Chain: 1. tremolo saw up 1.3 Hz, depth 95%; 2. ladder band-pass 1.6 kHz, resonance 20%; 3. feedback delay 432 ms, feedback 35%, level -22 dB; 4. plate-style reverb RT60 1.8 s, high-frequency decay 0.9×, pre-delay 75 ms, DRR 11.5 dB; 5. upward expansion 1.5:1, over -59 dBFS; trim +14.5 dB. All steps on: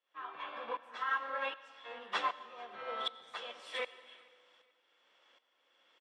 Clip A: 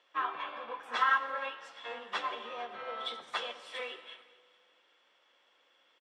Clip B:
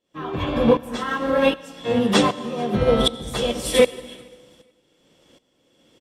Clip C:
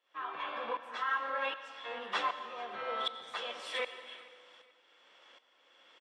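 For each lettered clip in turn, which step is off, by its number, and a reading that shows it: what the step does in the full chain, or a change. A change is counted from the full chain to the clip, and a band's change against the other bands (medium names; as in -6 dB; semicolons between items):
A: 1, momentary loudness spread change +2 LU; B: 2, 250 Hz band +21.0 dB; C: 5, loudness change +2.5 LU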